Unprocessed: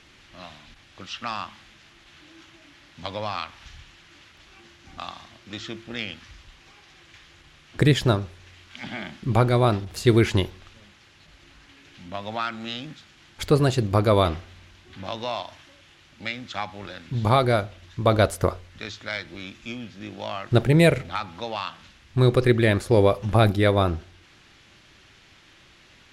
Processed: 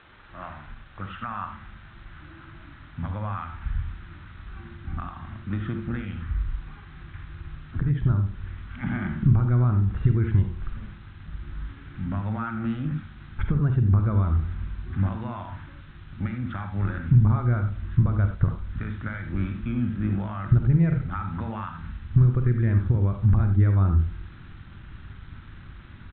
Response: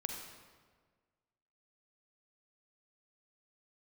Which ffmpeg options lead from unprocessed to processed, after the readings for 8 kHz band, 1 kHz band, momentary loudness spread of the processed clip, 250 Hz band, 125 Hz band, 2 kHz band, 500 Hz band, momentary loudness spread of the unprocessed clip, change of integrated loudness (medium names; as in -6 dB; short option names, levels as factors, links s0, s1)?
under -35 dB, -8.0 dB, 22 LU, -2.0 dB, +3.5 dB, -8.5 dB, -16.0 dB, 18 LU, -1.5 dB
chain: -filter_complex "[0:a]acompressor=threshold=0.0316:ratio=16,alimiter=level_in=1.12:limit=0.0631:level=0:latency=1:release=211,volume=0.891,lowpass=f=1400:t=q:w=2.6,aresample=8000,aeval=exprs='val(0)*gte(abs(val(0)),0.00211)':c=same,aresample=44100,asubboost=boost=11:cutoff=160[s0];[1:a]atrim=start_sample=2205,atrim=end_sample=4410[s1];[s0][s1]afir=irnorm=-1:irlink=0,volume=1.26"